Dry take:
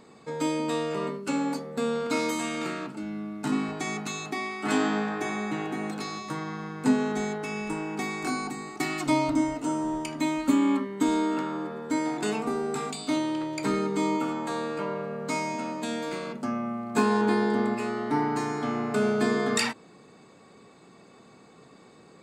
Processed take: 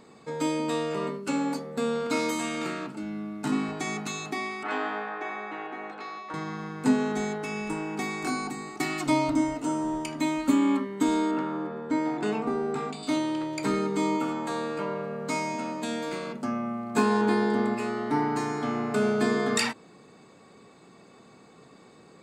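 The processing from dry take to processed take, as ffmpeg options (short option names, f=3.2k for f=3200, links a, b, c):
-filter_complex "[0:a]asettb=1/sr,asplit=3[a][b][c];[a]atrim=end=4.634[d];[b]atrim=start=4.63:end=6.34,asetpts=PTS-STARTPTS,afade=t=in:d=0.004:c=qsin,afade=t=out:st=1.706:d=0.004:c=qsin,highpass=530,lowpass=2.4k[e];[c]atrim=start=6.336[f];[d][e]acrossfade=d=0.004:c1=hsin:c2=qsin[g];[g][f]acrossfade=d=0.004:c1=qsin:c2=hsin,asettb=1/sr,asplit=3[h][i][j];[h]atrim=end=11.314[k];[i]atrim=start=11.31:end=13.03,asetpts=PTS-STARTPTS,afade=t=in:d=0.004:c=qsin,afade=t=out:st=1.716:d=0.004:c=qsin,aemphasis=mode=reproduction:type=75fm[l];[j]atrim=start=13.026[m];[k][l]acrossfade=d=0.004:c1=hsin:c2=qsin[n];[n][m]acrossfade=d=0.004:c1=qsin:c2=hsin"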